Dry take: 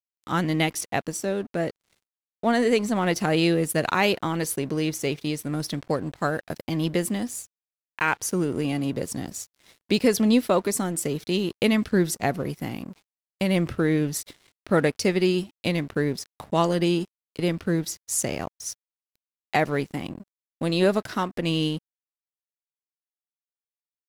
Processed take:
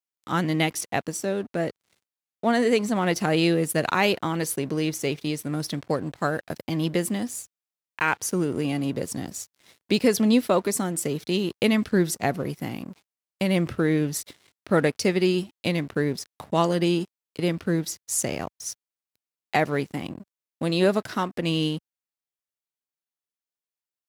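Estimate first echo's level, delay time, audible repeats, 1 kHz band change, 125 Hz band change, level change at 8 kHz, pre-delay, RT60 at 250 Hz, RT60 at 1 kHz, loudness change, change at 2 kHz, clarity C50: no echo audible, no echo audible, no echo audible, 0.0 dB, 0.0 dB, 0.0 dB, no reverb audible, no reverb audible, no reverb audible, 0.0 dB, 0.0 dB, no reverb audible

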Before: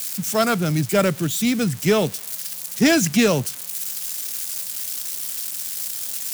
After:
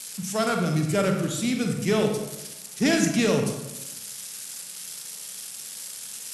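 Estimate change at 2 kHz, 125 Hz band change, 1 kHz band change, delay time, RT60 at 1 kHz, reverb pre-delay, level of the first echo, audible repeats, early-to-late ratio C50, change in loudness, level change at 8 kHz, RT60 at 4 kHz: −5.0 dB, −3.0 dB, −4.5 dB, no echo audible, 0.90 s, 34 ms, no echo audible, no echo audible, 4.0 dB, −5.0 dB, −5.5 dB, 0.55 s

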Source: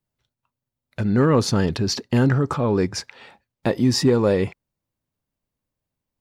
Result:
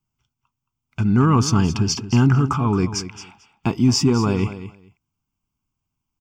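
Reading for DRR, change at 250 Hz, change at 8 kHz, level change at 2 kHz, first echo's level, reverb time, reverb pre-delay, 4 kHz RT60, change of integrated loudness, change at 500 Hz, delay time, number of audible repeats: no reverb audible, +2.0 dB, +4.0 dB, −1.0 dB, −13.0 dB, no reverb audible, no reverb audible, no reverb audible, +1.5 dB, −5.5 dB, 222 ms, 2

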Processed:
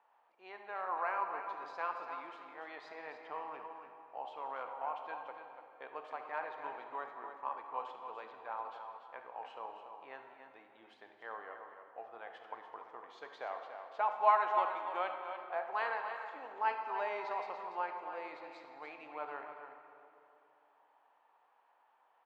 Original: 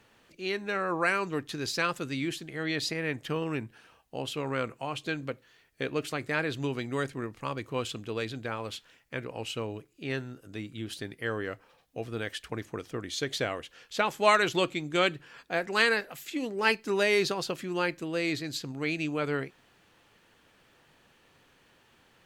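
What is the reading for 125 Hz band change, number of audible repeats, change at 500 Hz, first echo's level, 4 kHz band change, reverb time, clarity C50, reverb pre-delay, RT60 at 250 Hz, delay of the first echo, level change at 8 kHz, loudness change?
below −35 dB, 2, −11.5 dB, −15.0 dB, −23.5 dB, 2.7 s, 3.5 dB, 30 ms, 3.2 s, 71 ms, below −30 dB, −8.5 dB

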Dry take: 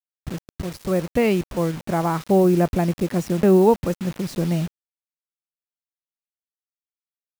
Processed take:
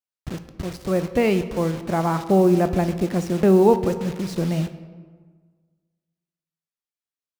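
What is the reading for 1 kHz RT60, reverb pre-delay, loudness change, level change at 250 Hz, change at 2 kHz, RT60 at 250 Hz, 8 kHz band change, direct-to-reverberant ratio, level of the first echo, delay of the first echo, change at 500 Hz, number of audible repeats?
1.5 s, 16 ms, 0.0 dB, 0.0 dB, 0.0 dB, 1.6 s, −1.5 dB, 10.0 dB, no echo audible, no echo audible, 0.0 dB, no echo audible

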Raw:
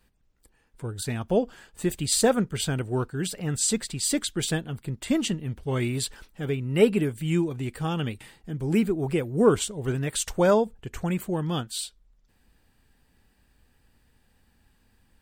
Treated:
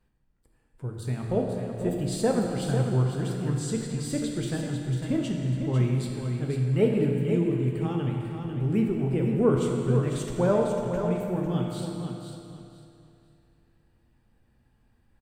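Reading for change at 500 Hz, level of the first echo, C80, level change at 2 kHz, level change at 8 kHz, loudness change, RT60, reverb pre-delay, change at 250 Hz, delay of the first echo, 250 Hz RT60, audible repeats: −1.5 dB, −7.5 dB, 1.5 dB, −6.5 dB, −12.0 dB, −0.5 dB, 2.8 s, 12 ms, 0.0 dB, 498 ms, 2.8 s, 3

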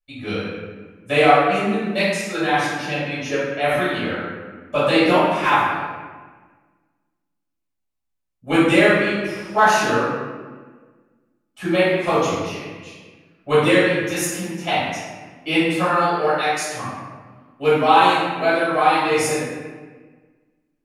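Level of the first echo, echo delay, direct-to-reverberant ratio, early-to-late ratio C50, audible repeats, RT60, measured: no echo audible, no echo audible, −13.0 dB, −2.5 dB, no echo audible, 1.4 s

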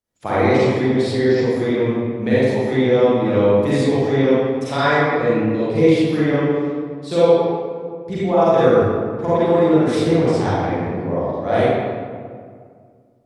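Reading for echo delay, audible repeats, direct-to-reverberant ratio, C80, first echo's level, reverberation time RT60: no echo audible, no echo audible, −11.5 dB, −2.5 dB, no echo audible, 2.0 s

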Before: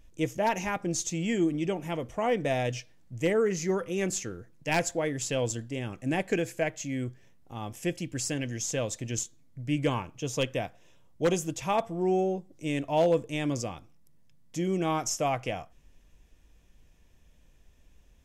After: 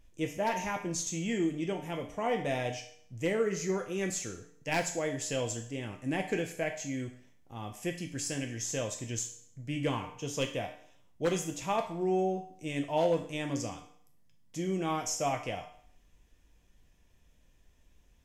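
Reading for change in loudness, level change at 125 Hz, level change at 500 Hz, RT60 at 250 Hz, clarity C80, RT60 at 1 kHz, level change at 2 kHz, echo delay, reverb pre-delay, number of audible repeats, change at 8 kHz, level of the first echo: −3.5 dB, −4.5 dB, −4.0 dB, 0.60 s, 13.0 dB, 0.55 s, −3.0 dB, no echo audible, 7 ms, no echo audible, −2.5 dB, no echo audible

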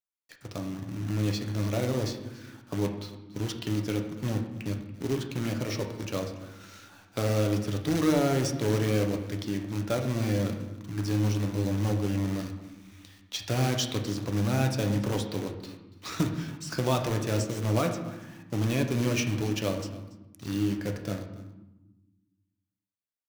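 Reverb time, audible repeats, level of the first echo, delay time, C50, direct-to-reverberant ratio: 1.1 s, 1, −20.0 dB, 284 ms, 7.5 dB, 3.0 dB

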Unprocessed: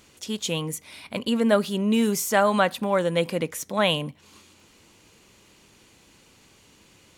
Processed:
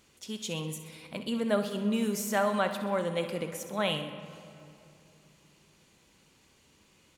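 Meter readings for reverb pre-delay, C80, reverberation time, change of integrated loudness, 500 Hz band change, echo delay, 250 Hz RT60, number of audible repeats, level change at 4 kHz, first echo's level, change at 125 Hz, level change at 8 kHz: 5 ms, 10.0 dB, 2.7 s, −7.5 dB, −7.0 dB, 64 ms, 3.4 s, 3, −8.0 dB, −12.0 dB, −7.0 dB, −8.0 dB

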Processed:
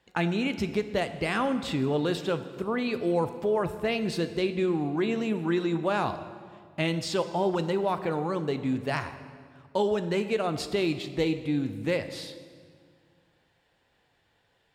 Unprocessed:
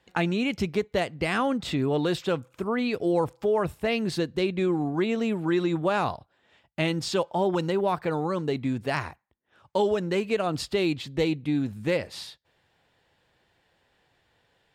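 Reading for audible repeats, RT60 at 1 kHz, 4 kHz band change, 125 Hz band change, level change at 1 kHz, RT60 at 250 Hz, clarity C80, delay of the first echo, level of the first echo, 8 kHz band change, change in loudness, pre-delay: no echo audible, 1.8 s, −1.5 dB, −1.5 dB, −1.5 dB, 2.3 s, 12.5 dB, no echo audible, no echo audible, −1.5 dB, −1.5 dB, 9 ms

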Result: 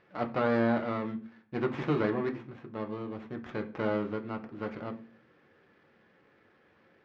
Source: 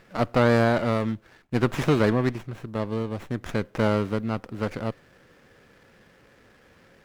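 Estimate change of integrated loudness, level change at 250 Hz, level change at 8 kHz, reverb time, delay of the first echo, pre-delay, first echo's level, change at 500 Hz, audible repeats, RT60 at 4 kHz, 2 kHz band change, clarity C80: −7.5 dB, −6.5 dB, below −20 dB, 0.45 s, no echo audible, 3 ms, no echo audible, −7.0 dB, no echo audible, 0.45 s, −8.0 dB, 19.0 dB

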